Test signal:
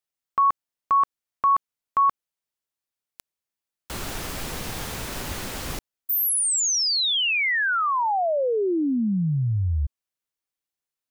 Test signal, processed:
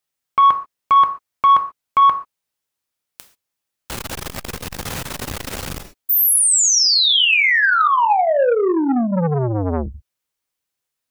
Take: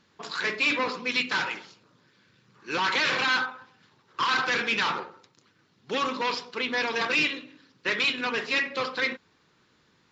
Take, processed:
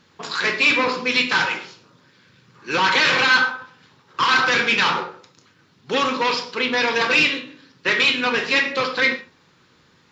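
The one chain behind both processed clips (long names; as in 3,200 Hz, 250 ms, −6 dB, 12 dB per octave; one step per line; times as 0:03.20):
reverb whose tail is shaped and stops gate 160 ms falling, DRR 6 dB
saturating transformer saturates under 640 Hz
level +7 dB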